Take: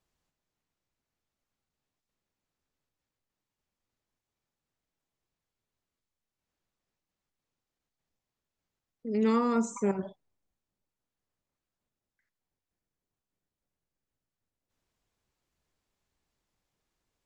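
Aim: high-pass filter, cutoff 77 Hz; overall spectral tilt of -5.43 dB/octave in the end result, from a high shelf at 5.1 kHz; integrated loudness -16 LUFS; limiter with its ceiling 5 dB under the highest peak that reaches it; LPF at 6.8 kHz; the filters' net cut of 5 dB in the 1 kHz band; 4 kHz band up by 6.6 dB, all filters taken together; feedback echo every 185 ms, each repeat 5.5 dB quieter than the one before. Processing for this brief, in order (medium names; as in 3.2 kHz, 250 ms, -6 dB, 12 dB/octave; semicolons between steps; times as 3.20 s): high-pass 77 Hz; low-pass 6.8 kHz; peaking EQ 1 kHz -7 dB; peaking EQ 4 kHz +7.5 dB; treble shelf 5.1 kHz +3.5 dB; peak limiter -22.5 dBFS; feedback delay 185 ms, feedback 53%, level -5.5 dB; trim +16 dB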